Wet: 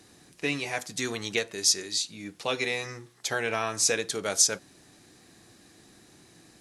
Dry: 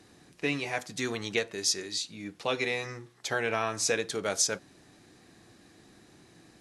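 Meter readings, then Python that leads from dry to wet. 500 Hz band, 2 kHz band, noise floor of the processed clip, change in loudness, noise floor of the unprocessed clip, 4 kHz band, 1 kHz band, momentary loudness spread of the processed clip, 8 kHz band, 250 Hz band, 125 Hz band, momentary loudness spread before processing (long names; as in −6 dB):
0.0 dB, +1.0 dB, −57 dBFS, +3.0 dB, −59 dBFS, +4.0 dB, +0.5 dB, 11 LU, +5.5 dB, 0.0 dB, 0.0 dB, 7 LU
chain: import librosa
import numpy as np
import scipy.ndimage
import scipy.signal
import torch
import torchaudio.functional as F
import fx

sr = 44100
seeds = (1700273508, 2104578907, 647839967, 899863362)

y = fx.high_shelf(x, sr, hz=4900.0, db=8.5)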